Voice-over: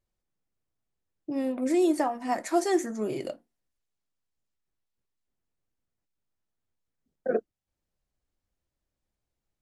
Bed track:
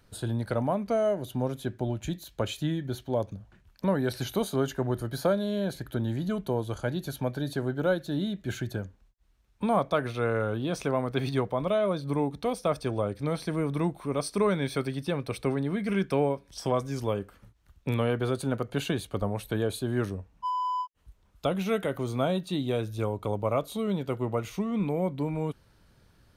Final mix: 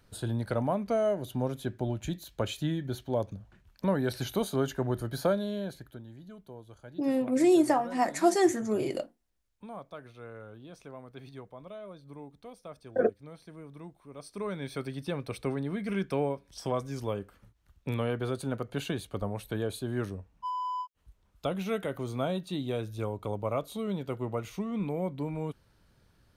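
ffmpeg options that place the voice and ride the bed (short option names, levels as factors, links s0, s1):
-filter_complex "[0:a]adelay=5700,volume=1.19[s0];[1:a]volume=4.22,afade=t=out:st=5.29:d=0.74:silence=0.149624,afade=t=in:st=14.12:d=0.95:silence=0.199526[s1];[s0][s1]amix=inputs=2:normalize=0"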